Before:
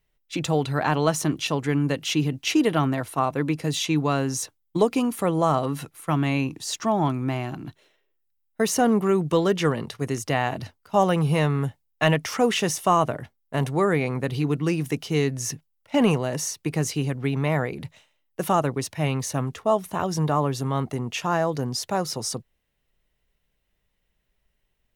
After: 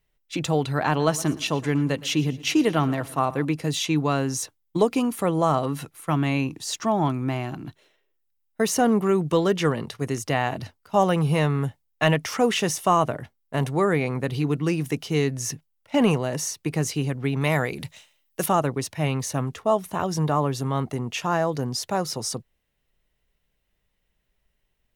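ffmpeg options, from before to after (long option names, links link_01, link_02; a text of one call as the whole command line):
ffmpeg -i in.wav -filter_complex "[0:a]asettb=1/sr,asplit=3[link_01][link_02][link_03];[link_01]atrim=end=0.884[link_04];[link_02]atrim=start=0.88:end=3.45,asetpts=PTS-STARTPTS,afade=type=in:duration=0.004:curve=qsin,afade=type=out:start_time=2.566:duration=0.004:curve=qsin,aecho=1:1:115|230|345|460:0.112|0.0561|0.0281|0.014,atrim=end_sample=113337[link_05];[link_03]atrim=start=3.446[link_06];[link_04][link_05]acrossfade=duration=0.004:curve1=hsin:curve2=qsin[link_07];[link_07][link_06]acrossfade=duration=0.004:curve1=qsin:curve2=hsin,asettb=1/sr,asplit=3[link_08][link_09][link_10];[link_08]atrim=end=17.414[link_11];[link_09]atrim=start=17.41:end=18.46,asetpts=PTS-STARTPTS,afade=type=in:duration=0.004:curve=qsin,afade=type=out:start_time=1.046:duration=0.004:curve=qsin,highshelf=frequency=2500:gain=11[link_12];[link_10]atrim=start=18.456[link_13];[link_11][link_12]acrossfade=duration=0.004:curve1=hsin:curve2=qsin[link_14];[link_14][link_13]acrossfade=duration=0.004:curve1=qsin:curve2=hsin" out.wav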